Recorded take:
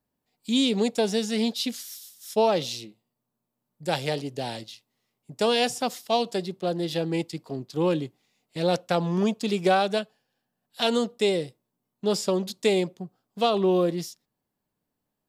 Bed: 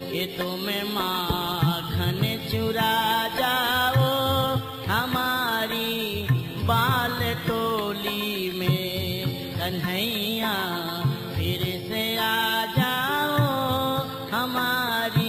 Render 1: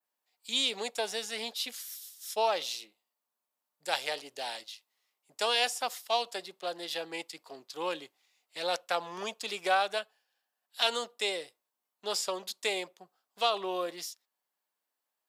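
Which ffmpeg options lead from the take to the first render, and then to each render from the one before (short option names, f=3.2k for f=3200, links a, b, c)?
-af "highpass=880,adynamicequalizer=threshold=0.00501:dfrequency=5100:dqfactor=0.72:tfrequency=5100:tqfactor=0.72:attack=5:release=100:ratio=0.375:range=3:mode=cutabove:tftype=bell"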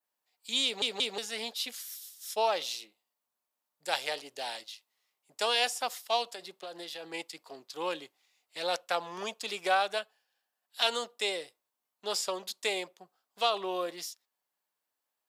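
-filter_complex "[0:a]asettb=1/sr,asplit=3[a][b][c];[a]atrim=end=6.264[d];[b]atrim=start=6.26:end=7.14,asetpts=PTS-STARTPTS,afade=t=in:d=0.004:c=qsin,afade=t=out:st=0.876:d=0.004:c=qsin,acompressor=threshold=-37dB:ratio=10:attack=3.2:release=140:knee=1:detection=peak[e];[c]atrim=start=7.136[f];[d][e]acrossfade=d=0.004:c1=hsin:c2=qsin[g];[g][f]acrossfade=d=0.004:c1=qsin:c2=hsin,asplit=4[h][i][j][k];[h]atrim=end=0.822[l];[i]atrim=start=0.638:end=0.822[m];[j]atrim=start=0.638:end=0.822[n];[k]atrim=start=1.178[o];[l][m]acrossfade=d=0.004:c1=hsin:c2=hsin[p];[p][n]acrossfade=d=0.004:c1=hsin:c2=hsin[q];[q][o]acrossfade=d=0.004:c1=hsin:c2=hsin"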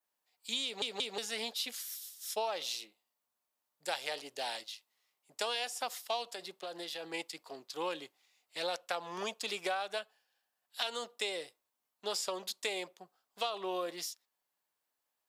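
-af "acompressor=threshold=-32dB:ratio=6"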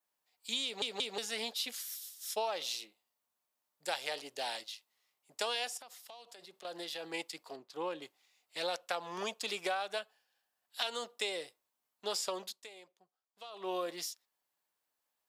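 -filter_complex "[0:a]asettb=1/sr,asplit=3[a][b][c];[a]atrim=end=5.774[d];[b]atrim=start=5.77:end=6.65,asetpts=PTS-STARTPTS,afade=t=in:d=0.004:c=qsin,afade=t=out:st=0.876:d=0.004:c=qsin,acompressor=threshold=-50dB:ratio=6:attack=3.2:release=140:knee=1:detection=peak[e];[c]atrim=start=6.646[f];[d][e]acrossfade=d=0.004:c1=hsin:c2=qsin[g];[g][f]acrossfade=d=0.004:c1=qsin:c2=hsin,asettb=1/sr,asplit=3[h][i][j];[h]atrim=end=7.564[k];[i]atrim=start=7.56:end=8.02,asetpts=PTS-STARTPTS,afade=t=in:d=0.004:c=qsin,afade=t=out:st=0.456:d=0.004:c=qsin,highshelf=f=2.2k:g=-11.5[l];[j]atrim=start=8.016[m];[k][l]acrossfade=d=0.004:c1=hsin:c2=qsin[n];[n][m]acrossfade=d=0.004:c1=qsin:c2=hsin,asplit=3[o][p][q];[o]atrim=end=12.71,asetpts=PTS-STARTPTS,afade=t=out:st=12.41:d=0.3:c=qua:silence=0.158489[r];[p]atrim=start=12.71:end=13.39,asetpts=PTS-STARTPTS,volume=-16dB[s];[q]atrim=start=13.39,asetpts=PTS-STARTPTS,afade=t=in:d=0.3:c=qua:silence=0.158489[t];[r][s][t]concat=n=3:v=0:a=1"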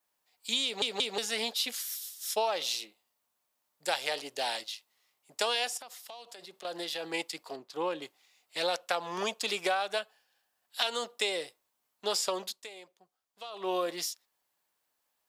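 -af "volume=5.5dB"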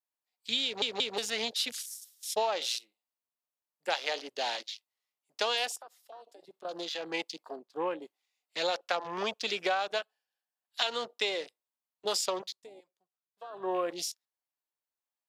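-af "highpass=140,afwtdn=0.00708"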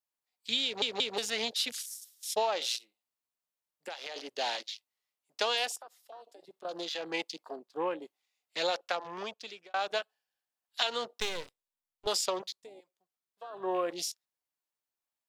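-filter_complex "[0:a]asettb=1/sr,asplit=3[a][b][c];[a]atrim=end=2.764[d];[b]atrim=start=2.76:end=4.16,asetpts=PTS-STARTPTS,afade=t=in:d=0.004:c=qsin,afade=t=out:st=1.396:d=0.004:c=qsin,acompressor=threshold=-37dB:ratio=6:attack=3.2:release=140:knee=1:detection=peak[e];[c]atrim=start=4.156[f];[d][e]acrossfade=d=0.004:c1=hsin:c2=qsin[g];[g][f]acrossfade=d=0.004:c1=qsin:c2=hsin,asettb=1/sr,asplit=3[h][i][j];[h]atrim=end=11.204[k];[i]atrim=start=11.2:end=12.07,asetpts=PTS-STARTPTS,afade=t=in:d=0.004:c=qsin,afade=t=out:st=0.866:d=0.004:c=qsin,aeval=exprs='max(val(0),0)':c=same[l];[j]atrim=start=12.066[m];[k][l]acrossfade=d=0.004:c1=hsin:c2=qsin[n];[n][m]acrossfade=d=0.004:c1=qsin:c2=hsin,asplit=2[o][p];[o]atrim=end=9.74,asetpts=PTS-STARTPTS,afade=t=out:st=8.71:d=1.03[q];[p]atrim=start=9.74,asetpts=PTS-STARTPTS,afade=t=in:d=0.004:c=hsin[r];[q][r]concat=n=2:v=0:a=1"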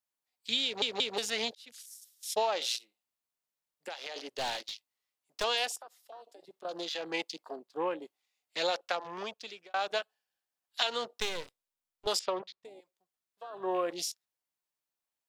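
-filter_complex "[0:a]asettb=1/sr,asplit=3[a][b][c];[a]atrim=end=4.374[d];[b]atrim=start=4.37:end=5.44,asetpts=PTS-STARTPTS,afade=t=in:d=0.004:c=qsin,afade=t=out:st=1.066:d=0.004:c=qsin,aeval=exprs='clip(val(0),-1,0.0211)':c=same[e];[c]atrim=start=5.436[f];[d][e]acrossfade=d=0.004:c1=hsin:c2=qsin[g];[g][f]acrossfade=d=0.004:c1=qsin:c2=hsin,asettb=1/sr,asplit=3[h][i][j];[h]atrim=end=12.194[k];[i]atrim=start=12.19:end=12.65,asetpts=PTS-STARTPTS,afade=t=in:d=0.004:c=qsin,afade=t=out:st=0.456:d=0.004:c=qsin,lowpass=2.6k[l];[j]atrim=start=12.646[m];[k][l]acrossfade=d=0.004:c1=hsin:c2=qsin[n];[n][m]acrossfade=d=0.004:c1=qsin:c2=hsin,asplit=2[o][p];[o]atrim=end=1.55,asetpts=PTS-STARTPTS,afade=t=out:st=1.546:d=0.004:c=hsin[q];[p]atrim=start=1.55,asetpts=PTS-STARTPTS,afade=t=in:d=0.84[r];[q][r]concat=n=2:v=0:a=1"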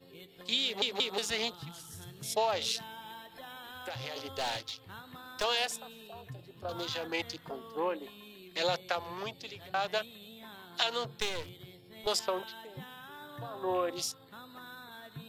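-filter_complex "[1:a]volume=-24dB[a];[0:a][a]amix=inputs=2:normalize=0"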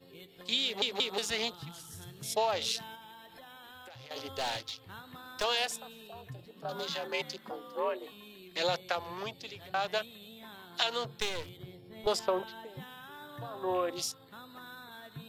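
-filter_complex "[0:a]asettb=1/sr,asplit=3[a][b][c];[a]atrim=end=2.954[d];[b]atrim=start=2.95:end=4.11,asetpts=PTS-STARTPTS,afade=t=in:d=0.004:c=qsin,afade=t=out:st=1.156:d=0.004:c=qsin,acompressor=threshold=-48dB:ratio=4:attack=3.2:release=140:knee=1:detection=peak[e];[c]atrim=start=4.106[f];[d][e]acrossfade=d=0.004:c1=hsin:c2=qsin[g];[g][f]acrossfade=d=0.004:c1=qsin:c2=hsin,asettb=1/sr,asplit=3[h][i][j];[h]atrim=end=6.464[k];[i]atrim=start=6.46:end=8.12,asetpts=PTS-STARTPTS,afade=t=in:d=0.004:c=qsin,afade=t=out:st=1.656:d=0.004:c=qsin,afreqshift=58[l];[j]atrim=start=8.116[m];[k][l]acrossfade=d=0.004:c1=hsin:c2=qsin[n];[n][m]acrossfade=d=0.004:c1=qsin:c2=hsin,asettb=1/sr,asplit=3[o][p][q];[o]atrim=end=11.574[r];[p]atrim=start=11.57:end=12.67,asetpts=PTS-STARTPTS,afade=t=in:d=0.004:c=qsin,afade=t=out:st=1.096:d=0.004:c=qsin,tiltshelf=f=1.5k:g=4.5[s];[q]atrim=start=12.666[t];[r][s]acrossfade=d=0.004:c1=hsin:c2=qsin[u];[u][t]acrossfade=d=0.004:c1=qsin:c2=hsin"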